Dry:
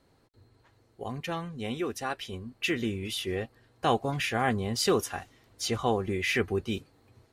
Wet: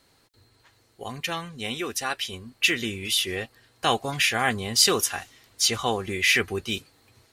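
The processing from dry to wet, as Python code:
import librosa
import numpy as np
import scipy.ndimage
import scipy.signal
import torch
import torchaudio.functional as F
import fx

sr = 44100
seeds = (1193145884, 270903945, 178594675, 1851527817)

y = fx.tilt_shelf(x, sr, db=-7.0, hz=1400.0)
y = F.gain(torch.from_numpy(y), 5.5).numpy()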